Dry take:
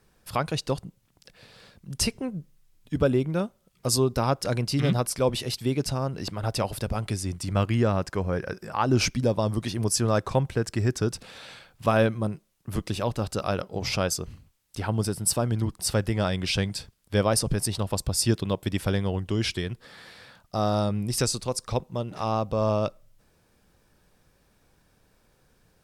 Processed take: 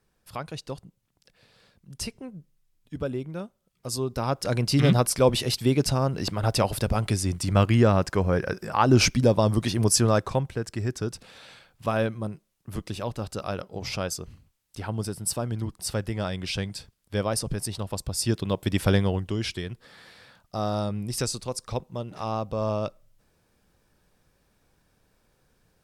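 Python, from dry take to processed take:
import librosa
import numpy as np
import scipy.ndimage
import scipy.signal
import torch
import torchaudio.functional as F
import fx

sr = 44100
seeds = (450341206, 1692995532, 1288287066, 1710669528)

y = fx.gain(x, sr, db=fx.line((3.87, -8.0), (4.76, 4.0), (9.99, 4.0), (10.52, -4.0), (18.11, -4.0), (18.95, 5.0), (19.4, -3.0)))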